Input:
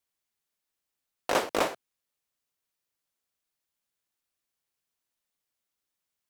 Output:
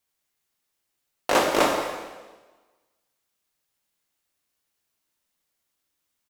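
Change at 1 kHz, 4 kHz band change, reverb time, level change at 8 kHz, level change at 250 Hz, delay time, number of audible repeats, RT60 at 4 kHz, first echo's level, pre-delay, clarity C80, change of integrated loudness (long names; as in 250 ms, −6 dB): +7.5 dB, +7.0 dB, 1.3 s, +7.0 dB, +8.5 dB, 217 ms, 1, 1.2 s, −16.0 dB, 7 ms, 5.0 dB, +6.0 dB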